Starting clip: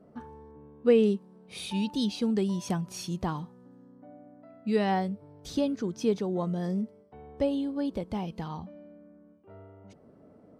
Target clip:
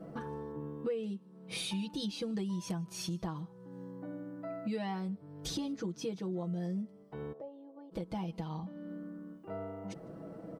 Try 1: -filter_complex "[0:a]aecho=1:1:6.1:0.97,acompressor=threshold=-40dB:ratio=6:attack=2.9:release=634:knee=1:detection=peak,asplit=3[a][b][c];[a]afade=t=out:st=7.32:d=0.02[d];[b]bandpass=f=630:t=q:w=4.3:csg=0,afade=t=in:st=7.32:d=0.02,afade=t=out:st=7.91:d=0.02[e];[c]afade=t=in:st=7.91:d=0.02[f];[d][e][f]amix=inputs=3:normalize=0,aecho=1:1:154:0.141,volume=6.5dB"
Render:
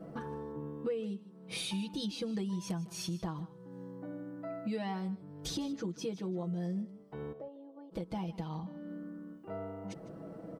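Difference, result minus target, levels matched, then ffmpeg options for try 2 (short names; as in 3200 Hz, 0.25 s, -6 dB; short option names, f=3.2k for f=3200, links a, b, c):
echo-to-direct +11.5 dB
-filter_complex "[0:a]aecho=1:1:6.1:0.97,acompressor=threshold=-40dB:ratio=6:attack=2.9:release=634:knee=1:detection=peak,asplit=3[a][b][c];[a]afade=t=out:st=7.32:d=0.02[d];[b]bandpass=f=630:t=q:w=4.3:csg=0,afade=t=in:st=7.32:d=0.02,afade=t=out:st=7.91:d=0.02[e];[c]afade=t=in:st=7.91:d=0.02[f];[d][e][f]amix=inputs=3:normalize=0,aecho=1:1:154:0.0376,volume=6.5dB"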